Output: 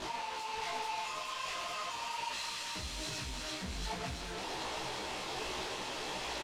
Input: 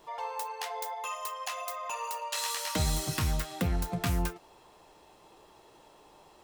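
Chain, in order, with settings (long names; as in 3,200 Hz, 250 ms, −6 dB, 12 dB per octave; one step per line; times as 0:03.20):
sign of each sample alone
low-pass filter 4,300 Hz 12 dB per octave
high-shelf EQ 3,400 Hz +8.5 dB
double-tracking delay 16 ms −2.5 dB
delay with a high-pass on its return 340 ms, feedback 69%, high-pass 1,900 Hz, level −4 dB
micro pitch shift up and down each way 44 cents
level −5 dB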